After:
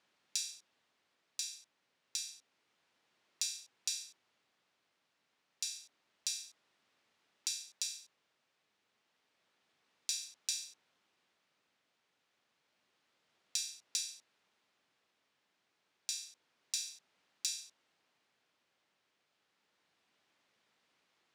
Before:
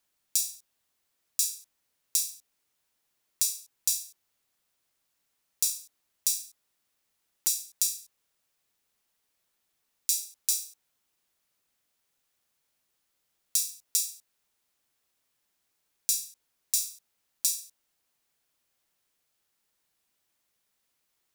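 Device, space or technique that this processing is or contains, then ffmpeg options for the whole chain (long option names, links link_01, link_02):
AM radio: -af "highpass=150,lowpass=3700,acompressor=threshold=-39dB:ratio=5,asoftclip=type=tanh:threshold=-25dB,tremolo=f=0.29:d=0.32,volume=7.5dB"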